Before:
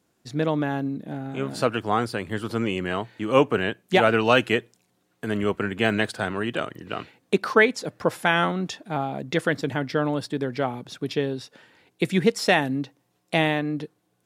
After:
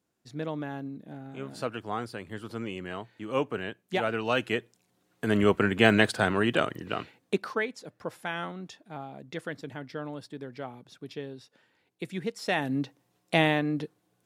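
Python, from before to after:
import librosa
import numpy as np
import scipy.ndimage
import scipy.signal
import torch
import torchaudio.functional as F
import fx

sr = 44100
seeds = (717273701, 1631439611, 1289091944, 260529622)

y = fx.gain(x, sr, db=fx.line((4.2, -10.0), (5.39, 2.0), (6.71, 2.0), (7.34, -6.0), (7.61, -13.0), (12.37, -13.0), (12.78, -1.5)))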